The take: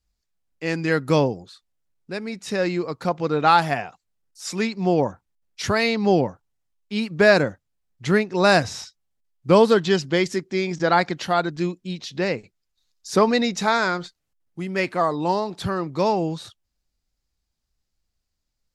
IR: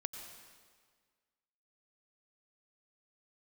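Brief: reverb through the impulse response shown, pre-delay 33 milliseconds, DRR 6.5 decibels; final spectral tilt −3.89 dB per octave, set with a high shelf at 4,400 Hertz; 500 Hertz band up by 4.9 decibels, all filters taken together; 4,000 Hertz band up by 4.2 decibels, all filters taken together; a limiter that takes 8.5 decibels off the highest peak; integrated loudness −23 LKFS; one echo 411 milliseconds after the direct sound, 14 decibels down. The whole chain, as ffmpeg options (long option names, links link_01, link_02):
-filter_complex "[0:a]equalizer=frequency=500:width_type=o:gain=6,equalizer=frequency=4000:width_type=o:gain=3,highshelf=frequency=4400:gain=3.5,alimiter=limit=-9dB:level=0:latency=1,aecho=1:1:411:0.2,asplit=2[link_01][link_02];[1:a]atrim=start_sample=2205,adelay=33[link_03];[link_02][link_03]afir=irnorm=-1:irlink=0,volume=-5.5dB[link_04];[link_01][link_04]amix=inputs=2:normalize=0,volume=-2dB"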